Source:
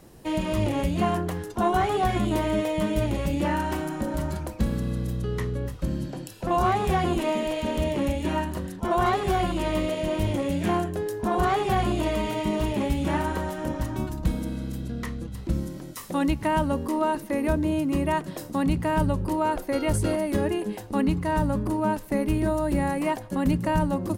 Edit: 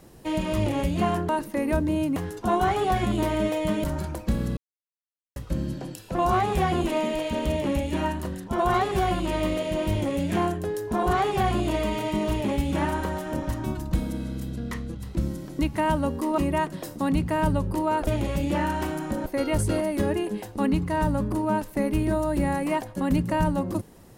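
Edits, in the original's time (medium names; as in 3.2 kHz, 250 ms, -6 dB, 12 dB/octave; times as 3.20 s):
2.97–4.16 s: move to 19.61 s
4.89–5.68 s: mute
15.91–16.26 s: delete
17.05–17.92 s: move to 1.29 s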